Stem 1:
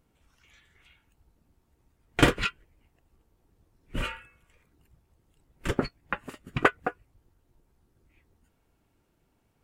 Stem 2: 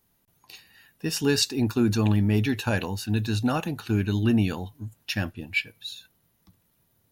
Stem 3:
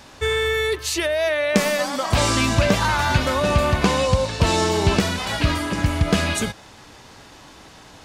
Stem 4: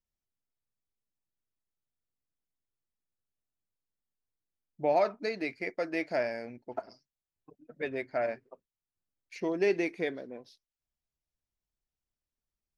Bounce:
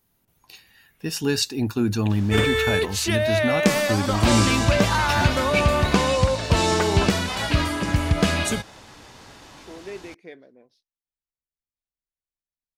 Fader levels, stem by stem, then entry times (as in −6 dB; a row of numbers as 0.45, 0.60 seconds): −6.5, 0.0, −1.0, −9.5 decibels; 0.15, 0.00, 2.10, 0.25 seconds